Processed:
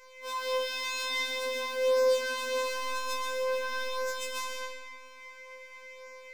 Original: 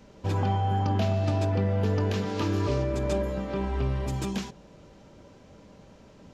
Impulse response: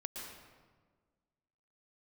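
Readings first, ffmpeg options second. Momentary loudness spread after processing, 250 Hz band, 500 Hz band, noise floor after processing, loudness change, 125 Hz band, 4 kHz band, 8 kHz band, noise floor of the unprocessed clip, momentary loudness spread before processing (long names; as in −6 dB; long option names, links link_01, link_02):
20 LU, −25.0 dB, +1.0 dB, −50 dBFS, −3.0 dB, below −40 dB, +7.5 dB, can't be measured, −53 dBFS, 5 LU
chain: -filter_complex "[0:a]asplit=2[link_01][link_02];[link_02]acrusher=bits=4:mode=log:mix=0:aa=0.000001,volume=-5.5dB[link_03];[link_01][link_03]amix=inputs=2:normalize=0,aeval=exprs='val(0)+0.01*sin(2*PI*2200*n/s)':channel_layout=same[link_04];[1:a]atrim=start_sample=2205,asetrate=39249,aresample=44100[link_05];[link_04][link_05]afir=irnorm=-1:irlink=0,acrossover=split=610[link_06][link_07];[link_07]aeval=exprs='0.126*sin(PI/2*3.55*val(0)/0.126)':channel_layout=same[link_08];[link_06][link_08]amix=inputs=2:normalize=0,bandreject=frequency=57.51:width_type=h:width=4,bandreject=frequency=115.02:width_type=h:width=4,bandreject=frequency=172.53:width_type=h:width=4,bandreject=frequency=230.04:width_type=h:width=4,bandreject=frequency=287.55:width_type=h:width=4,bandreject=frequency=345.06:width_type=h:width=4,bandreject=frequency=402.57:width_type=h:width=4,bandreject=frequency=460.08:width_type=h:width=4,bandreject=frequency=517.59:width_type=h:width=4,bandreject=frequency=575.1:width_type=h:width=4,bandreject=frequency=632.61:width_type=h:width=4,bandreject=frequency=690.12:width_type=h:width=4,bandreject=frequency=747.63:width_type=h:width=4,bandreject=frequency=805.14:width_type=h:width=4,bandreject=frequency=862.65:width_type=h:width=4,bandreject=frequency=920.16:width_type=h:width=4,bandreject=frequency=977.67:width_type=h:width=4,bandreject=frequency=1035.18:width_type=h:width=4,bandreject=frequency=1092.69:width_type=h:width=4,bandreject=frequency=1150.2:width_type=h:width=4,bandreject=frequency=1207.71:width_type=h:width=4,bandreject=frequency=1265.22:width_type=h:width=4,bandreject=frequency=1322.73:width_type=h:width=4,bandreject=frequency=1380.24:width_type=h:width=4,bandreject=frequency=1437.75:width_type=h:width=4,bandreject=frequency=1495.26:width_type=h:width=4,bandreject=frequency=1552.77:width_type=h:width=4,bandreject=frequency=1610.28:width_type=h:width=4,bandreject=frequency=1667.79:width_type=h:width=4,bandreject=frequency=1725.3:width_type=h:width=4,bandreject=frequency=1782.81:width_type=h:width=4,bandreject=frequency=1840.32:width_type=h:width=4,bandreject=frequency=1897.83:width_type=h:width=4,afftfilt=real='hypot(re,im)*cos(PI*b)':imag='0':win_size=1024:overlap=0.75,flanger=delay=19.5:depth=3:speed=0.49,afftfilt=real='re*3.46*eq(mod(b,12),0)':imag='im*3.46*eq(mod(b,12),0)':win_size=2048:overlap=0.75,volume=-6.5dB"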